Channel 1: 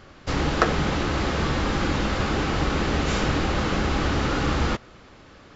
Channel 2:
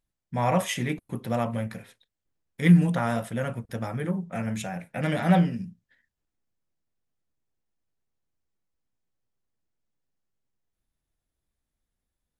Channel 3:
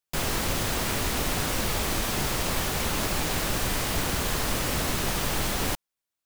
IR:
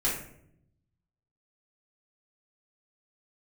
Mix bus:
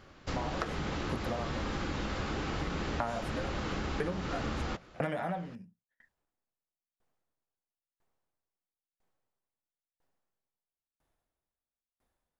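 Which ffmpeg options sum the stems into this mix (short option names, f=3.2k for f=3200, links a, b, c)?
-filter_complex "[0:a]volume=-8dB[a];[1:a]equalizer=f=820:w=0.48:g=12.5,acompressor=threshold=-18dB:ratio=6,aeval=exprs='val(0)*pow(10,-34*if(lt(mod(1*n/s,1),2*abs(1)/1000),1-mod(1*n/s,1)/(2*abs(1)/1000),(mod(1*n/s,1)-2*abs(1)/1000)/(1-2*abs(1)/1000))/20)':c=same,volume=2.5dB[b];[a][b]amix=inputs=2:normalize=0,acompressor=threshold=-31dB:ratio=5"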